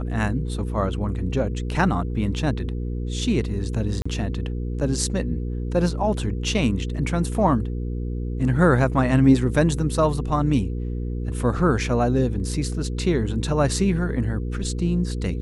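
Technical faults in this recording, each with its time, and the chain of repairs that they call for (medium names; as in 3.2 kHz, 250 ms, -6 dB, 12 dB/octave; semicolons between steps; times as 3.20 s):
hum 60 Hz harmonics 8 -27 dBFS
4.02–4.05 s: dropout 35 ms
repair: de-hum 60 Hz, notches 8; interpolate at 4.02 s, 35 ms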